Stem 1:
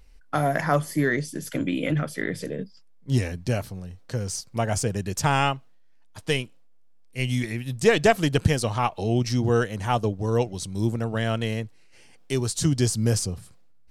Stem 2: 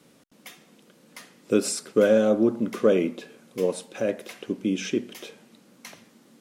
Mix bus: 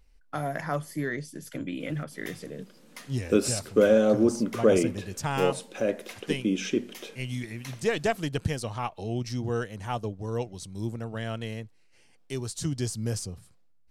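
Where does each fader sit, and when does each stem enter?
-8.0 dB, -1.0 dB; 0.00 s, 1.80 s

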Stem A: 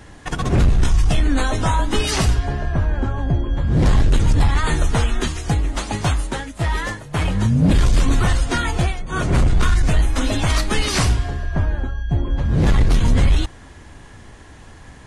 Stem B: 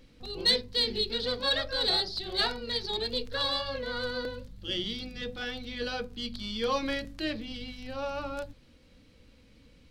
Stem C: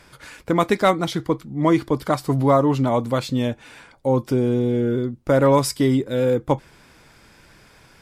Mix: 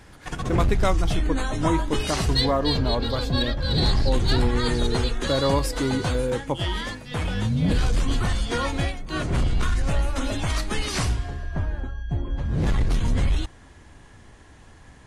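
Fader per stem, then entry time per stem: -7.0 dB, -0.5 dB, -7.0 dB; 0.00 s, 1.90 s, 0.00 s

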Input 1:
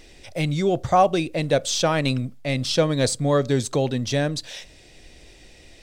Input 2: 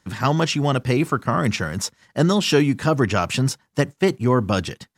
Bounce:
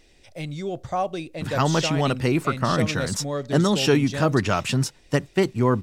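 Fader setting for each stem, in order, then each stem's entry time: -8.5 dB, -2.0 dB; 0.00 s, 1.35 s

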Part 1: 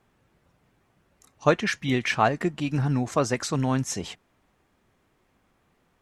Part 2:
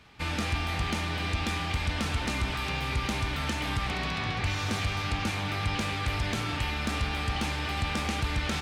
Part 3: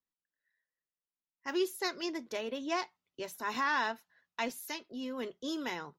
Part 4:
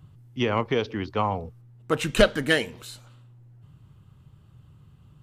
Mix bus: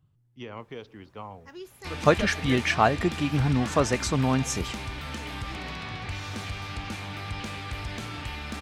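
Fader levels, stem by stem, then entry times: +0.5 dB, -5.0 dB, -11.0 dB, -15.5 dB; 0.60 s, 1.65 s, 0.00 s, 0.00 s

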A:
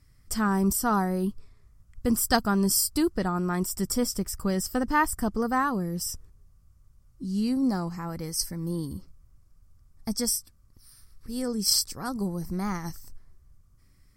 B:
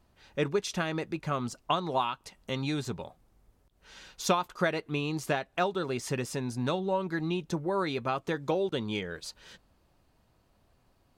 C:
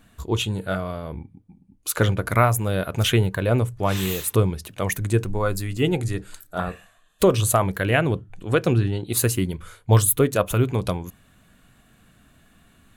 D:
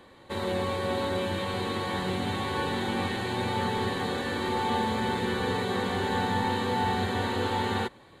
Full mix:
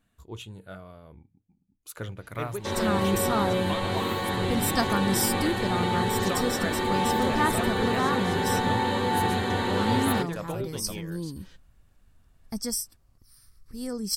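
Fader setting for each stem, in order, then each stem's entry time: -3.0 dB, -7.0 dB, -16.5 dB, +2.0 dB; 2.45 s, 2.00 s, 0.00 s, 2.35 s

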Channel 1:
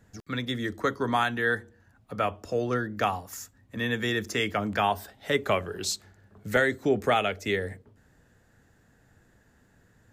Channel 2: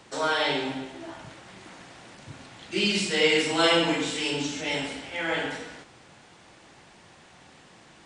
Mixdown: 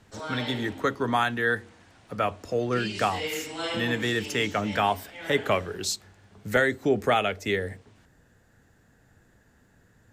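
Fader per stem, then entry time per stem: +1.0 dB, -10.5 dB; 0.00 s, 0.00 s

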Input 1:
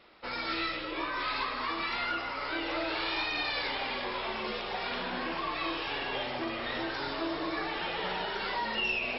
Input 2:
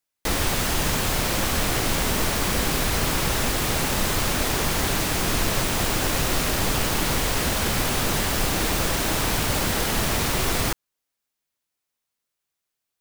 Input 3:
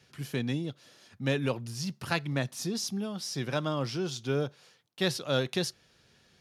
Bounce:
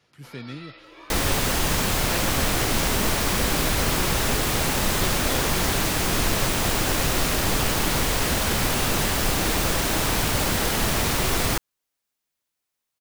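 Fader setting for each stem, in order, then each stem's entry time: -11.5 dB, +0.5 dB, -5.5 dB; 0.00 s, 0.85 s, 0.00 s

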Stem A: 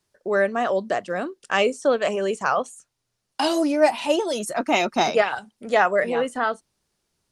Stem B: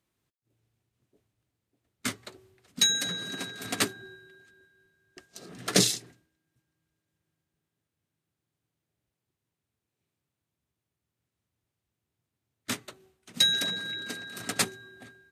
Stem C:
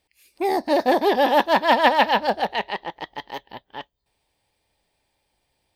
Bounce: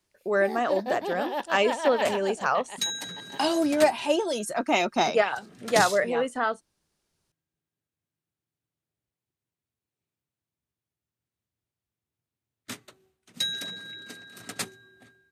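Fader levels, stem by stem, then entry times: -3.0 dB, -6.0 dB, -13.5 dB; 0.00 s, 0.00 s, 0.00 s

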